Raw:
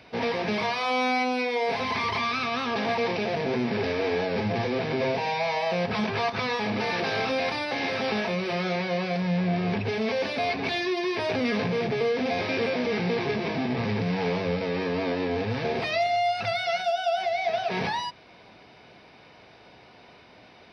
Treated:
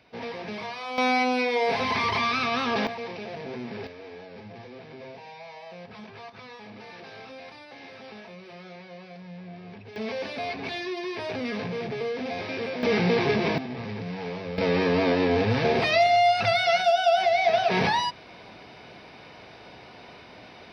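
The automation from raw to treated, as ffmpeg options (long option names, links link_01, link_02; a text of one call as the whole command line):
ffmpeg -i in.wav -af "asetnsamples=nb_out_samples=441:pad=0,asendcmd='0.98 volume volume 2dB;2.87 volume volume -9dB;3.87 volume volume -16.5dB;9.96 volume volume -5dB;12.83 volume volume 4dB;13.58 volume volume -7dB;14.58 volume volume 5dB',volume=-8dB" out.wav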